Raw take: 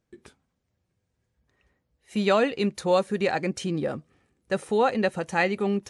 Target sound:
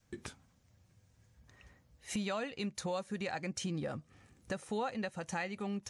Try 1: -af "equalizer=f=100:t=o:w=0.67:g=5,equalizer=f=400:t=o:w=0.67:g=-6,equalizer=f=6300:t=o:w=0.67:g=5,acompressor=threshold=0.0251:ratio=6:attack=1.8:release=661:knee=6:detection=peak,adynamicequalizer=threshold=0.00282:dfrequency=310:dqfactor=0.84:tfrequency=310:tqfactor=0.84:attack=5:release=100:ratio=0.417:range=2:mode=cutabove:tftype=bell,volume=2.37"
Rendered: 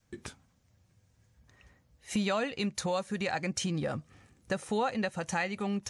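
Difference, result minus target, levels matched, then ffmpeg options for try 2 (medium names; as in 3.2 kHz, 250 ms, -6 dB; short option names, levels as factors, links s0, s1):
compression: peak gain reduction -6.5 dB
-af "equalizer=f=100:t=o:w=0.67:g=5,equalizer=f=400:t=o:w=0.67:g=-6,equalizer=f=6300:t=o:w=0.67:g=5,acompressor=threshold=0.01:ratio=6:attack=1.8:release=661:knee=6:detection=peak,adynamicequalizer=threshold=0.00282:dfrequency=310:dqfactor=0.84:tfrequency=310:tqfactor=0.84:attack=5:release=100:ratio=0.417:range=2:mode=cutabove:tftype=bell,volume=2.37"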